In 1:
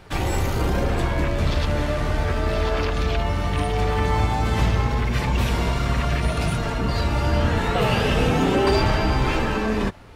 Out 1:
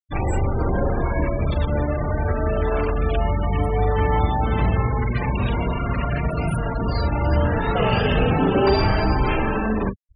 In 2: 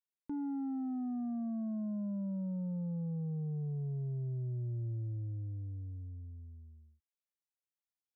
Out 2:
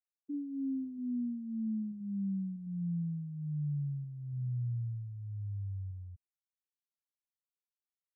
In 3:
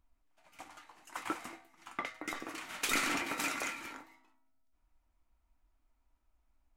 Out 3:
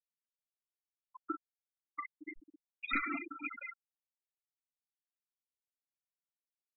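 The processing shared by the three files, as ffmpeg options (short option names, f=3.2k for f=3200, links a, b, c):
-filter_complex "[0:a]asplit=2[a][b];[b]adelay=41,volume=-7dB[c];[a][c]amix=inputs=2:normalize=0,afftfilt=real='re*gte(hypot(re,im),0.0708)':imag='im*gte(hypot(re,im),0.0708)':win_size=1024:overlap=0.75"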